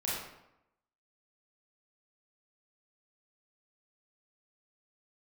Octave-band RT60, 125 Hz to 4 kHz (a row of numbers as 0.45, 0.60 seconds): 0.85, 0.90, 0.85, 0.85, 0.75, 0.60 seconds